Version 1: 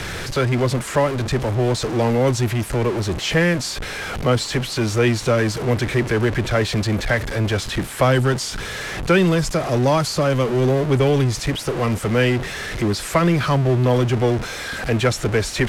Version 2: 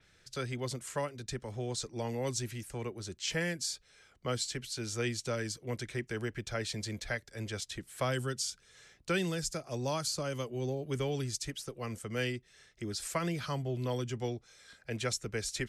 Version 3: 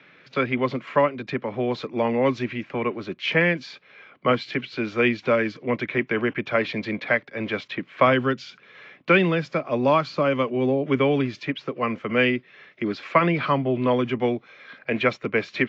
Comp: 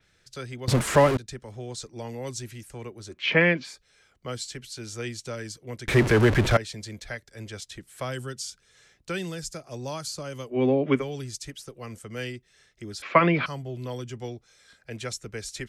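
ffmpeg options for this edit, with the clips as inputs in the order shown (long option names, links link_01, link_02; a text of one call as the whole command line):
ffmpeg -i take0.wav -i take1.wav -i take2.wav -filter_complex "[0:a]asplit=2[link_01][link_02];[2:a]asplit=3[link_03][link_04][link_05];[1:a]asplit=6[link_06][link_07][link_08][link_09][link_10][link_11];[link_06]atrim=end=0.682[link_12];[link_01]atrim=start=0.678:end=1.172[link_13];[link_07]atrim=start=1.168:end=3.24[link_14];[link_03]atrim=start=3.08:end=3.79[link_15];[link_08]atrim=start=3.63:end=5.882[link_16];[link_02]atrim=start=5.878:end=6.572[link_17];[link_09]atrim=start=6.568:end=10.59[link_18];[link_04]atrim=start=10.49:end=11.04[link_19];[link_10]atrim=start=10.94:end=13.022[link_20];[link_05]atrim=start=13.018:end=13.462[link_21];[link_11]atrim=start=13.458[link_22];[link_12][link_13]acrossfade=duration=0.004:curve1=hsin:curve2=hsin[link_23];[link_23][link_14]acrossfade=duration=0.004:curve1=hsin:curve2=hsin[link_24];[link_24][link_15]acrossfade=duration=0.16:curve1=tri:curve2=tri[link_25];[link_25][link_16]acrossfade=duration=0.16:curve1=tri:curve2=tri[link_26];[link_26][link_17]acrossfade=duration=0.004:curve1=hsin:curve2=hsin[link_27];[link_27][link_18]acrossfade=duration=0.004:curve1=hsin:curve2=hsin[link_28];[link_28][link_19]acrossfade=duration=0.1:curve1=tri:curve2=tri[link_29];[link_29][link_20]acrossfade=duration=0.1:curve1=tri:curve2=tri[link_30];[link_30][link_21]acrossfade=duration=0.004:curve1=hsin:curve2=hsin[link_31];[link_31][link_22]acrossfade=duration=0.004:curve1=hsin:curve2=hsin" out.wav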